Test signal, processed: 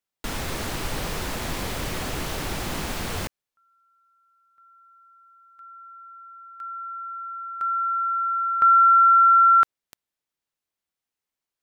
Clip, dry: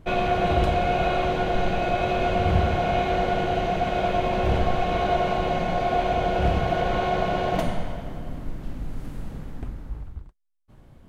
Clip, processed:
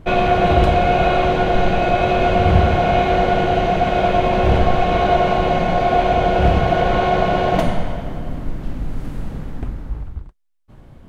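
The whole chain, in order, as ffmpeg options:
-af "highshelf=f=5200:g=-5,volume=2.37"

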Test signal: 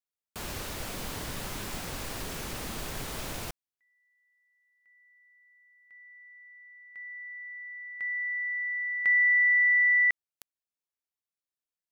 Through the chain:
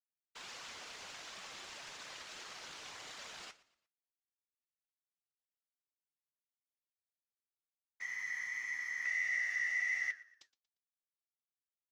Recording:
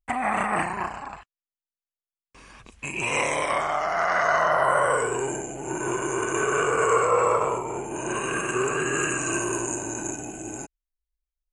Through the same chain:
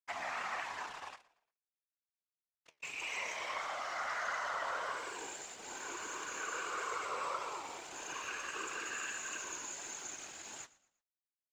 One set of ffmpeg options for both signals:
-filter_complex "[0:a]highpass=f=980:p=1,highshelf=f=3700:g=11,acompressor=threshold=0.0316:ratio=2:attack=7.6:release=186:knee=6:detection=peak,aresample=16000,acrusher=bits=5:mix=0:aa=0.000001,aresample=44100,aeval=exprs='sgn(val(0))*max(abs(val(0))-0.00501,0)':c=same,afftfilt=real='hypot(re,im)*cos(2*PI*random(0))':imag='hypot(re,im)*sin(2*PI*random(1))':win_size=512:overlap=0.75,flanger=delay=6:depth=9:regen=67:speed=1.6:shape=triangular,asplit=2[s0][s1];[s1]highpass=f=720:p=1,volume=2.24,asoftclip=type=tanh:threshold=0.0562[s2];[s0][s2]amix=inputs=2:normalize=0,lowpass=f=2800:p=1,volume=0.501,asplit=2[s3][s4];[s4]asplit=3[s5][s6][s7];[s5]adelay=117,afreqshift=-39,volume=0.1[s8];[s6]adelay=234,afreqshift=-78,volume=0.0359[s9];[s7]adelay=351,afreqshift=-117,volume=0.013[s10];[s8][s9][s10]amix=inputs=3:normalize=0[s11];[s3][s11]amix=inputs=2:normalize=0,volume=1.12"

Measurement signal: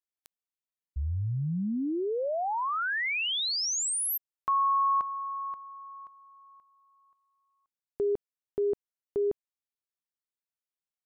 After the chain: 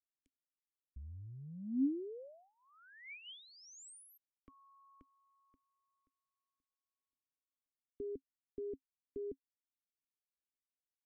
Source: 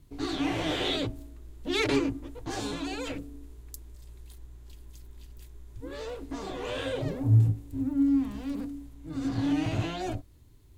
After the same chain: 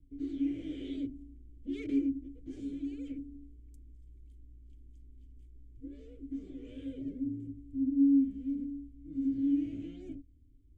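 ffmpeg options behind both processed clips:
-filter_complex "[0:a]equalizer=f=125:t=o:w=1:g=-9,equalizer=f=250:t=o:w=1:g=4,equalizer=f=500:t=o:w=1:g=7,equalizer=f=1000:t=o:w=1:g=-5,equalizer=f=2000:t=o:w=1:g=-8,equalizer=f=4000:t=o:w=1:g=-11,equalizer=f=8000:t=o:w=1:g=8,acrossover=split=170[s0][s1];[s0]acompressor=threshold=0.00447:ratio=6:attack=12:release=21:knee=6[s2];[s1]asplit=3[s3][s4][s5];[s3]bandpass=f=270:t=q:w=8,volume=1[s6];[s4]bandpass=f=2290:t=q:w=8,volume=0.501[s7];[s5]bandpass=f=3010:t=q:w=8,volume=0.355[s8];[s6][s7][s8]amix=inputs=3:normalize=0[s9];[s2][s9]amix=inputs=2:normalize=0,volume=0.75"

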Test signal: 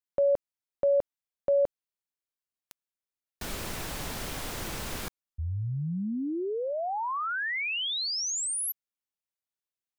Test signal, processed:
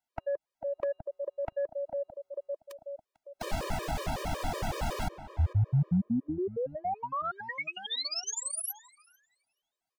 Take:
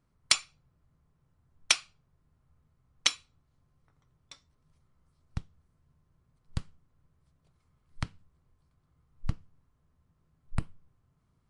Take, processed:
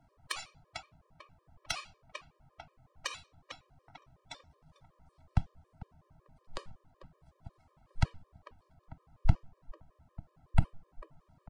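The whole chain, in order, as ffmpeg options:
-filter_complex "[0:a]equalizer=f=730:w=1.5:g=12,asplit=2[s0][s1];[s1]adelay=446,lowpass=f=1500:p=1,volume=0.141,asplit=2[s2][s3];[s3]adelay=446,lowpass=f=1500:p=1,volume=0.5,asplit=2[s4][s5];[s5]adelay=446,lowpass=f=1500:p=1,volume=0.5,asplit=2[s6][s7];[s7]adelay=446,lowpass=f=1500:p=1,volume=0.5[s8];[s2][s4][s6][s8]amix=inputs=4:normalize=0[s9];[s0][s9]amix=inputs=2:normalize=0,aeval=exprs='0.473*sin(PI/2*1.58*val(0)/0.473)':c=same,highshelf=f=8000:g=-9.5,acrossover=split=180[s10][s11];[s11]acompressor=threshold=0.0316:ratio=10:attack=5.1:release=86:knee=2.83:detection=peak[s12];[s10][s12]amix=inputs=2:normalize=0,afftfilt=real='re*gt(sin(2*PI*5.4*pts/sr)*(1-2*mod(floor(b*sr/1024/320),2)),0)':imag='im*gt(sin(2*PI*5.4*pts/sr)*(1-2*mod(floor(b*sr/1024/320),2)),0)':win_size=1024:overlap=0.75"

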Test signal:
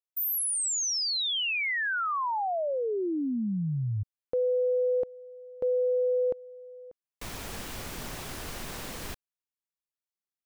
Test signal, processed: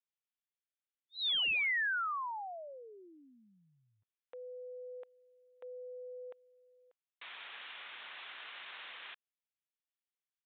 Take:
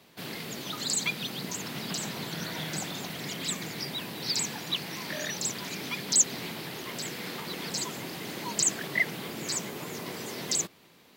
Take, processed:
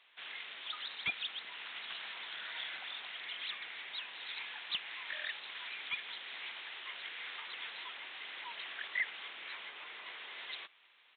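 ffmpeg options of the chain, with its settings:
-af "highpass=1500,aresample=8000,asoftclip=type=hard:threshold=0.0398,aresample=44100,volume=0.841"

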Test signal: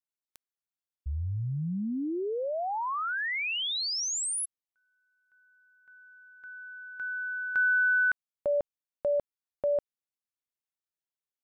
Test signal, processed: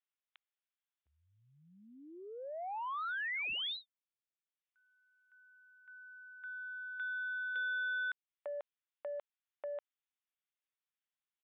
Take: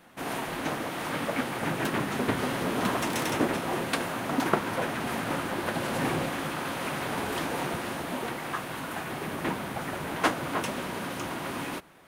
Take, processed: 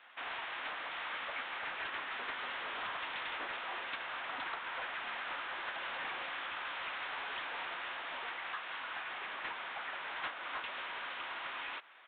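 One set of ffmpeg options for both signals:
-af "highpass=1200,acompressor=threshold=0.00794:ratio=2:attack=51:release=219:knee=6:detection=rms,aresample=8000,asoftclip=type=tanh:threshold=0.0168,aresample=44100,volume=1.26"

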